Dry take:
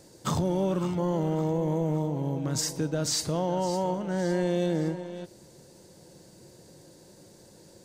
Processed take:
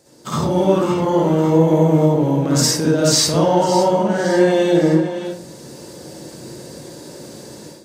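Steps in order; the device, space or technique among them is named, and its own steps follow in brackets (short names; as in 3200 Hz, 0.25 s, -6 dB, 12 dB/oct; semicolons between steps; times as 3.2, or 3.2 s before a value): far laptop microphone (reverb RT60 0.40 s, pre-delay 49 ms, DRR -5.5 dB; HPF 180 Hz 6 dB/oct; AGC gain up to 13 dB); gain -1 dB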